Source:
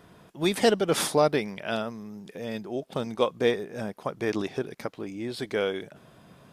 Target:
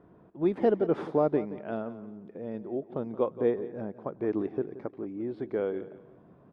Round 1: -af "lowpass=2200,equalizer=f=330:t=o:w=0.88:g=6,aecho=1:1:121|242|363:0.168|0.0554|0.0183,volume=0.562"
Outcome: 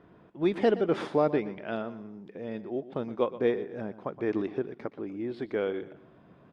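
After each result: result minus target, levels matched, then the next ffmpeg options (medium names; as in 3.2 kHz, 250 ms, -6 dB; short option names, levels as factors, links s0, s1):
2 kHz band +7.0 dB; echo 54 ms early
-af "lowpass=1100,equalizer=f=330:t=o:w=0.88:g=6,aecho=1:1:121|242|363:0.168|0.0554|0.0183,volume=0.562"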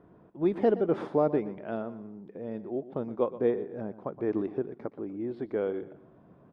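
echo 54 ms early
-af "lowpass=1100,equalizer=f=330:t=o:w=0.88:g=6,aecho=1:1:175|350|525:0.168|0.0554|0.0183,volume=0.562"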